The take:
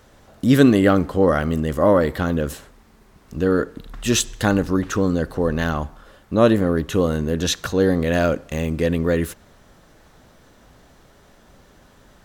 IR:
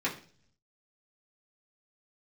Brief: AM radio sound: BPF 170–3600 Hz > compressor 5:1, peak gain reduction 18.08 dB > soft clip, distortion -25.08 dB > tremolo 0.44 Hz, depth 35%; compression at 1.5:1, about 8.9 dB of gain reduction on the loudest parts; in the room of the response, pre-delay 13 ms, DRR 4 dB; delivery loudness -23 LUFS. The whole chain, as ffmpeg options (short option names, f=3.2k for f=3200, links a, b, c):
-filter_complex "[0:a]acompressor=threshold=-34dB:ratio=1.5,asplit=2[a][b];[1:a]atrim=start_sample=2205,adelay=13[c];[b][c]afir=irnorm=-1:irlink=0,volume=-12dB[d];[a][d]amix=inputs=2:normalize=0,highpass=170,lowpass=3.6k,acompressor=threshold=-35dB:ratio=5,asoftclip=threshold=-24dB,tremolo=f=0.44:d=0.35,volume=17.5dB"